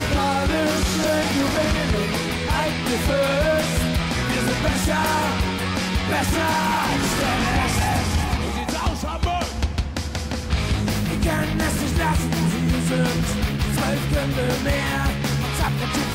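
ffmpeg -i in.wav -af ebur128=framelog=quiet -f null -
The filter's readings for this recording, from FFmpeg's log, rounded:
Integrated loudness:
  I:         -21.8 LUFS
  Threshold: -31.8 LUFS
Loudness range:
  LRA:         2.8 LU
  Threshold: -41.8 LUFS
  LRA low:   -23.8 LUFS
  LRA high:  -21.0 LUFS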